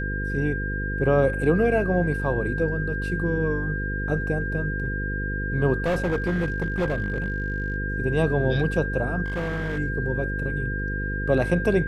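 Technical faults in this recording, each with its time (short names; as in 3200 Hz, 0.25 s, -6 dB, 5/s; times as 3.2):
buzz 50 Hz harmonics 10 -29 dBFS
tone 1600 Hz -30 dBFS
5.84–7.76 clipped -20 dBFS
9.24–9.78 clipped -24 dBFS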